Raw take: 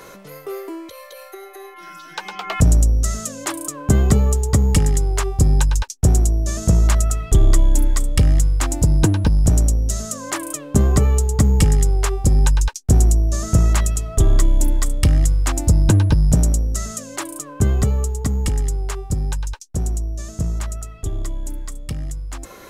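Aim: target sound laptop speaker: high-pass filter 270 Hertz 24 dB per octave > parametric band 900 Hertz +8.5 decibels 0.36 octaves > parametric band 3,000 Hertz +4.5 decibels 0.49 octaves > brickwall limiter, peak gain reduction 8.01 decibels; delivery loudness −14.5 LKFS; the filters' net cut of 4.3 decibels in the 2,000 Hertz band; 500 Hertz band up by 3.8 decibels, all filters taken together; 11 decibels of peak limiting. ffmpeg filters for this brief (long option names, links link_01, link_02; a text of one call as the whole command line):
ffmpeg -i in.wav -af "equalizer=frequency=500:width_type=o:gain=5,equalizer=frequency=2000:width_type=o:gain=-7.5,alimiter=limit=-12.5dB:level=0:latency=1,highpass=frequency=270:width=0.5412,highpass=frequency=270:width=1.3066,equalizer=frequency=900:width_type=o:width=0.36:gain=8.5,equalizer=frequency=3000:width_type=o:width=0.49:gain=4.5,volume=17dB,alimiter=limit=-2dB:level=0:latency=1" out.wav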